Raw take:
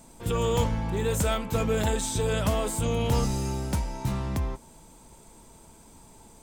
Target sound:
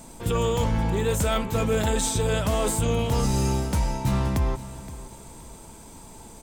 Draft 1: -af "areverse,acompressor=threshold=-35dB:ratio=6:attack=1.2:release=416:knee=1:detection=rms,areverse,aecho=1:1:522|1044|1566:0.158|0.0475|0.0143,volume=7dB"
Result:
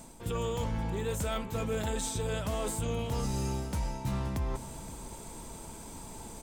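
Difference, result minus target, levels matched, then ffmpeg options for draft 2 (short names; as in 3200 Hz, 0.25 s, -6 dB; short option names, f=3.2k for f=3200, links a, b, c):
compressor: peak gain reduction +9 dB
-af "areverse,acompressor=threshold=-24dB:ratio=6:attack=1.2:release=416:knee=1:detection=rms,areverse,aecho=1:1:522|1044|1566:0.158|0.0475|0.0143,volume=7dB"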